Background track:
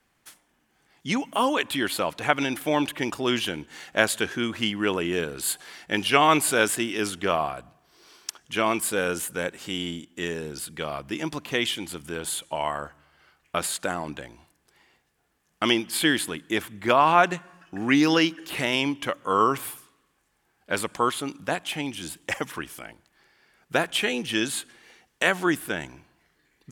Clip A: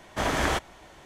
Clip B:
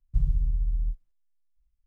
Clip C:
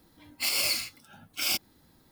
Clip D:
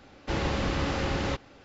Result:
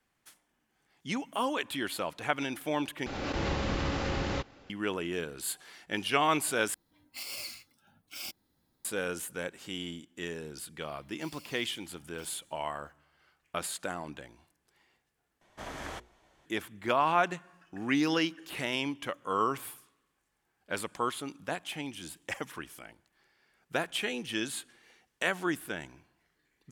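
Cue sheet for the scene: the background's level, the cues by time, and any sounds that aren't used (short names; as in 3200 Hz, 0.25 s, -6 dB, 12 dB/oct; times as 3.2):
background track -8 dB
3.06 replace with D -3.5 dB + backwards sustainer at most 29 dB/s
6.74 replace with C -13 dB
10.81 add C -12.5 dB + compressor 5:1, threshold -40 dBFS
15.41 replace with A -15 dB + notches 60/120/180/240/300/360/420/480 Hz
not used: B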